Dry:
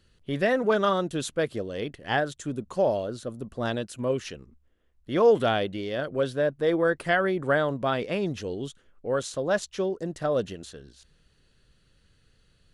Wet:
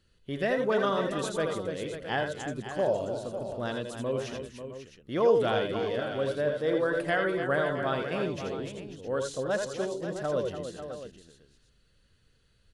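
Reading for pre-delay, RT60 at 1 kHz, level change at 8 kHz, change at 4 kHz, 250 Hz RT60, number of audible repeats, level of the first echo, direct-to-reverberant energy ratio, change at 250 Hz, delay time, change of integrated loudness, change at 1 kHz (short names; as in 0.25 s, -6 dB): none, none, -3.0 dB, -3.0 dB, none, 4, -5.0 dB, none, -3.5 dB, 81 ms, -3.0 dB, -3.5 dB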